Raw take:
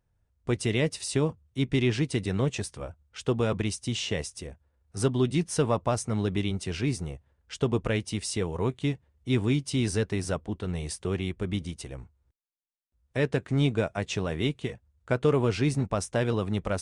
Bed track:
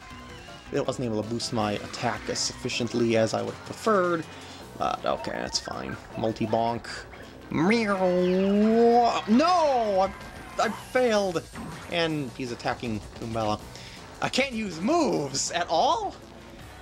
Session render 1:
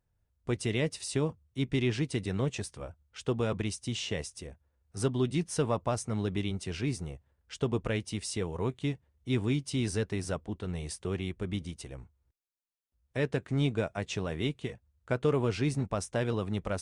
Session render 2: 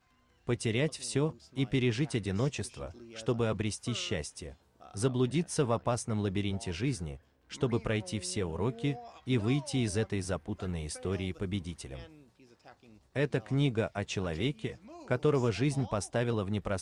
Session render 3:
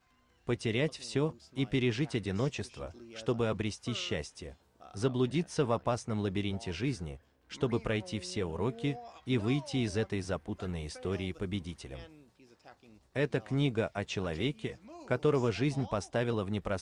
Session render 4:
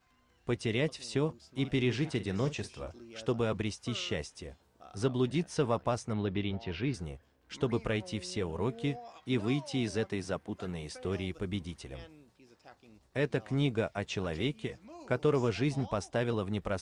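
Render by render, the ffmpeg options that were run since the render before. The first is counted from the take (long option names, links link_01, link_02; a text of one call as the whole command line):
ffmpeg -i in.wav -af "volume=-4dB" out.wav
ffmpeg -i in.wav -i bed.wav -filter_complex "[1:a]volume=-26.5dB[link_01];[0:a][link_01]amix=inputs=2:normalize=0" out.wav
ffmpeg -i in.wav -filter_complex "[0:a]acrossover=split=6500[link_01][link_02];[link_02]acompressor=threshold=-60dB:ratio=4:attack=1:release=60[link_03];[link_01][link_03]amix=inputs=2:normalize=0,equalizer=frequency=110:width=0.91:gain=-2.5" out.wav
ffmpeg -i in.wav -filter_complex "[0:a]asettb=1/sr,asplit=3[link_01][link_02][link_03];[link_01]atrim=end=1.604[link_04];[link_02]atrim=start=1.6:end=2.91,asetpts=PTS-STARTPTS,afade=type=in:duration=0.004:curve=qsin,afade=type=out:start_time=1.306:duration=0.004:curve=qsin,asplit=2[link_05][link_06];[link_06]adelay=47,volume=-13.5dB[link_07];[link_05][link_07]amix=inputs=2:normalize=0,atrim=end_sample=57771[link_08];[link_03]atrim=start=2.906[link_09];[link_04][link_08]acrossfade=duration=0.004:curve1=hsin:curve2=qsin[link_10];[link_10][link_09]acrossfade=duration=0.004:curve1=qsin:curve2=hsin,asettb=1/sr,asplit=3[link_11][link_12][link_13];[link_11]atrim=end=6.134[link_14];[link_12]atrim=start=6.13:end=6.94,asetpts=PTS-STARTPTS,afade=type=in:duration=0.004:curve=qsin,afade=type=out:start_time=0.806:duration=0.004:curve=qsin,lowpass=frequency=4200:width=0.5412,lowpass=frequency=4200:width=1.3066[link_15];[link_13]atrim=start=6.936[link_16];[link_14][link_15]acrossfade=duration=0.004:curve1=hsin:curve2=qsin[link_17];[link_17][link_16]acrossfade=duration=0.004:curve1=qsin:curve2=hsin,asettb=1/sr,asplit=3[link_18][link_19][link_20];[link_18]atrim=end=8.994[link_21];[link_19]atrim=start=8.99:end=10.94,asetpts=PTS-STARTPTS,afade=type=in:duration=0.004:curve=qsin,afade=type=out:start_time=1.946:duration=0.004:curve=qsin,highpass=110[link_22];[link_20]atrim=start=10.936[link_23];[link_21][link_22]acrossfade=duration=0.004:curve1=hsin:curve2=qsin[link_24];[link_24][link_23]acrossfade=duration=0.004:curve1=qsin:curve2=hsin" out.wav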